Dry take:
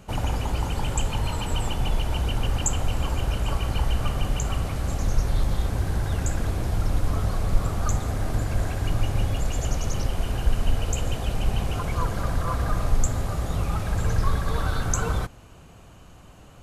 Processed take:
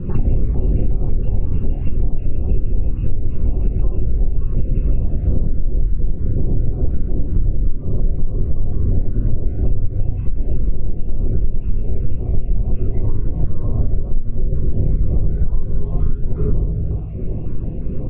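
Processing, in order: random spectral dropouts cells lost 26%; limiter -17 dBFS, peak gain reduction 9.5 dB; LPF 2900 Hz 24 dB/oct; speed mistake 48 kHz file played as 44.1 kHz; resonant low shelf 600 Hz +7 dB, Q 1.5; speakerphone echo 0.31 s, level -19 dB; shoebox room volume 83 m³, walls mixed, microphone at 0.96 m; compressor 8:1, threshold -26 dBFS, peak gain reduction 26.5 dB; tilt shelf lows +9.5 dB; stepped notch 5.5 Hz 680–1800 Hz; gain +5 dB

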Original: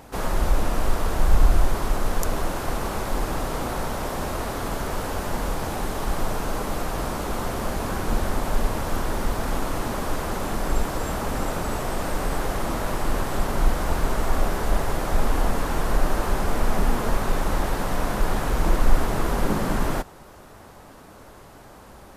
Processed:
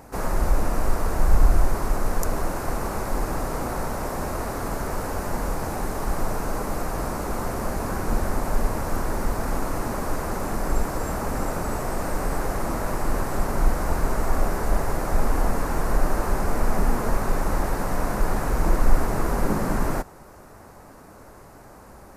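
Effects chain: bell 3300 Hz -11.5 dB 0.64 oct

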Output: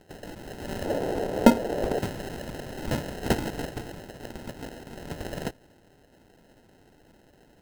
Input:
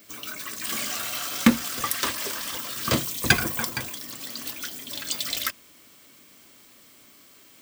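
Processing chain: sample-and-hold 38×; 0.85–1.99 bell 520 Hz +12.5 dB 1.6 oct; gain -4.5 dB

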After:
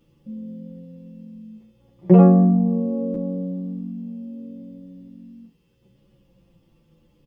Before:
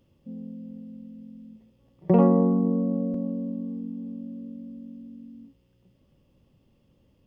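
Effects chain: notch 660 Hz, Q 12; comb 5.9 ms, depth 59%; endless flanger 10 ms -0.71 Hz; gain +6.5 dB

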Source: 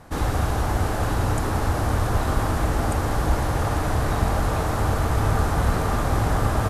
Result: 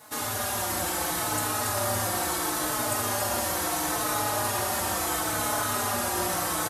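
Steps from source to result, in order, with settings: HPF 68 Hz; RIAA curve recording; in parallel at 0 dB: limiter -21.5 dBFS, peak gain reduction 11 dB; on the sum: bit-crush 9-bit; split-band echo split 800 Hz, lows 0.57 s, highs 0.281 s, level -5 dB; on a send at -2 dB: reverb RT60 0.85 s, pre-delay 3 ms; on the sum: endless flanger 4.2 ms -0.73 Hz; gain -6.5 dB

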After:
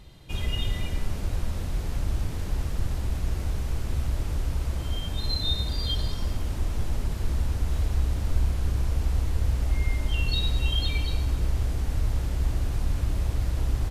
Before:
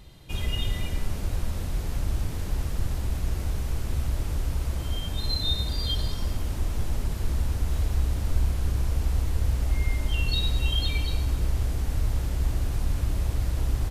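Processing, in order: high shelf 10000 Hz -6 dB

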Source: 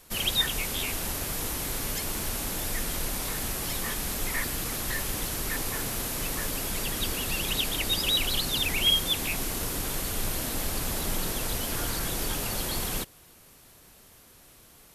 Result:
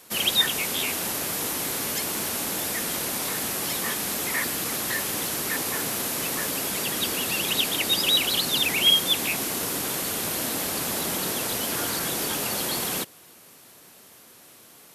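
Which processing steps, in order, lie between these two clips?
HPF 180 Hz 12 dB/oct; gain +4.5 dB

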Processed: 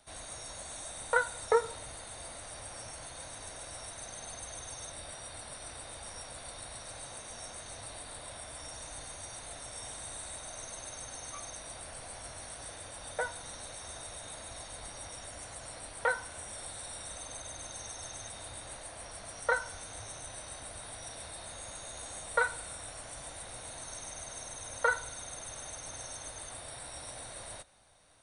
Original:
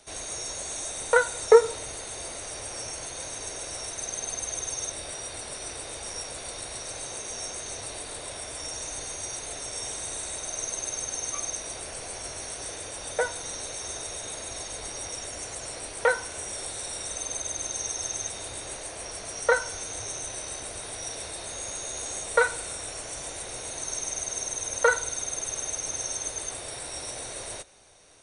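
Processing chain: fifteen-band EQ 400 Hz -11 dB, 2500 Hz -5 dB, 6300 Hz -11 dB; gain -4 dB

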